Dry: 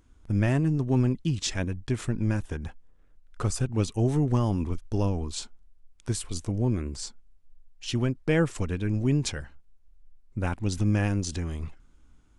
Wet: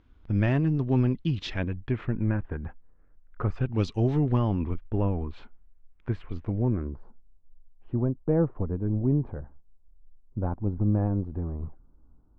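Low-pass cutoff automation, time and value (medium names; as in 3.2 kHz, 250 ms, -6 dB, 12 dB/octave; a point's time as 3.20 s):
low-pass 24 dB/octave
1.29 s 4.1 kHz
2.46 s 1.9 kHz
3.44 s 1.9 kHz
3.85 s 4.9 kHz
4.96 s 2.3 kHz
6.58 s 2.3 kHz
7.04 s 1 kHz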